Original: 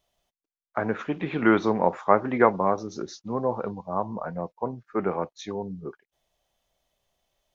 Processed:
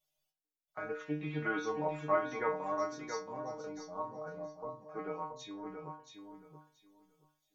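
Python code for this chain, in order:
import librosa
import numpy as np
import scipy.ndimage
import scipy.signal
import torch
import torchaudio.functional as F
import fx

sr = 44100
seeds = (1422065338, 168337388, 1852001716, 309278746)

p1 = fx.high_shelf(x, sr, hz=4700.0, db=11.0)
p2 = fx.stiff_resonator(p1, sr, f0_hz=150.0, decay_s=0.43, stiffness=0.002)
y = p2 + fx.echo_feedback(p2, sr, ms=677, feedback_pct=20, wet_db=-6.5, dry=0)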